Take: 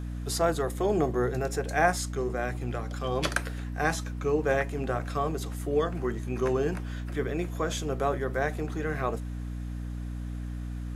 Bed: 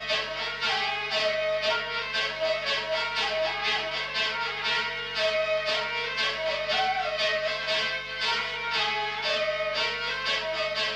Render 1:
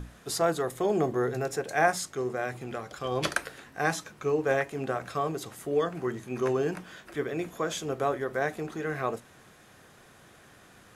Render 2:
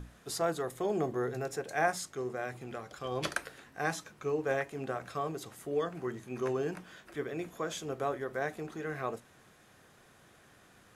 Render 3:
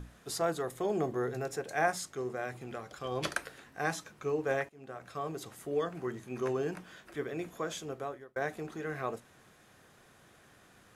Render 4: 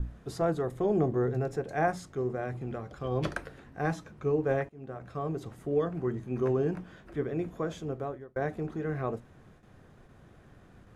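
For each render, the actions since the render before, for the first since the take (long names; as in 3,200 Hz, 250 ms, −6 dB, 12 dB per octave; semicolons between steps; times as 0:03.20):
mains-hum notches 60/120/180/240/300 Hz
level −5.5 dB
0:04.69–0:05.41: fade in, from −22 dB; 0:07.51–0:08.36: fade out equal-power
noise gate with hold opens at −50 dBFS; spectral tilt −3.5 dB per octave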